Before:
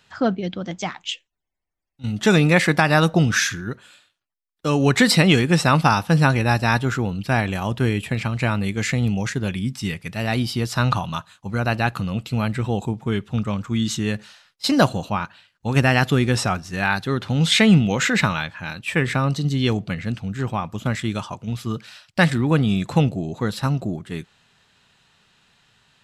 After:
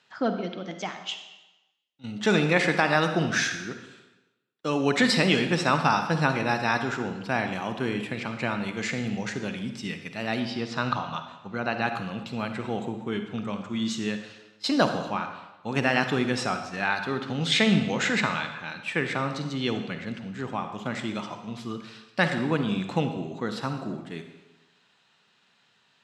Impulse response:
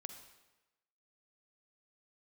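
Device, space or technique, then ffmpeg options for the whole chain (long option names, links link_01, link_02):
supermarket ceiling speaker: -filter_complex "[0:a]asettb=1/sr,asplit=3[link_01][link_02][link_03];[link_01]atrim=end=10.404[link_04];[link_02]atrim=start=10.4:end=11.82,asetpts=PTS-STARTPTS,afade=type=in:duration=0.004:curve=qsin,afade=type=out:start_time=1.416:duration=0.004:curve=qsin,lowpass=5200[link_05];[link_03]atrim=start=11.816[link_06];[link_04][link_05]acrossfade=duration=0.004:curve1=hsin:curve2=qsin[link_07];[link_07][link_06]acrossfade=duration=0.004:curve1=qsin:curve2=hsin,highpass=210,lowpass=6400[link_08];[1:a]atrim=start_sample=2205[link_09];[link_08][link_09]afir=irnorm=-1:irlink=0"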